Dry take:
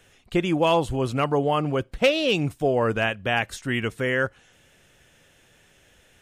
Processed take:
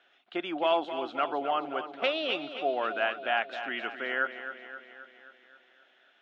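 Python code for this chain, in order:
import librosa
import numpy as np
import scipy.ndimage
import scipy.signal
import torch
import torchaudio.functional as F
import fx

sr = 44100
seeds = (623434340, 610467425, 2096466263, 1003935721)

p1 = fx.cabinet(x, sr, low_hz=300.0, low_slope=24, high_hz=4100.0, hz=(470.0, 700.0, 1400.0, 3400.0), db=(-8, 8, 9, 5))
p2 = p1 + fx.echo_feedback(p1, sr, ms=264, feedback_pct=58, wet_db=-10.5, dry=0)
y = p2 * librosa.db_to_amplitude(-8.5)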